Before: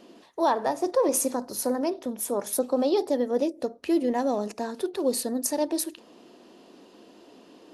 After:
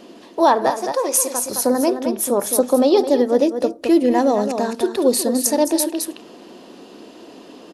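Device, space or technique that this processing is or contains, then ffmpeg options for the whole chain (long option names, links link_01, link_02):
ducked delay: -filter_complex "[0:a]asettb=1/sr,asplit=3[link_01][link_02][link_03];[link_01]atrim=end=0.704[link_04];[link_02]atrim=start=0.7:end=1.46,asetpts=PTS-STARTPTS,afade=type=in:duration=0.004:curve=qsin,afade=type=out:start_time=0.756:duration=0.004:curve=qsin,highpass=frequency=1200:poles=1[link_05];[link_03]atrim=start=1.456[link_06];[link_04][link_05]acrossfade=duration=0.004:curve1=hsin:curve2=qsin[link_07];[link_07][link_06]acrossfade=duration=0.004:curve1=qsin:curve2=hsin,asplit=3[link_08][link_09][link_10];[link_09]adelay=215,volume=-3.5dB[link_11];[link_10]apad=whole_len=350451[link_12];[link_11][link_12]sidechaincompress=threshold=-28dB:ratio=8:attack=21:release=570[link_13];[link_08][link_13]amix=inputs=2:normalize=0,volume=9dB"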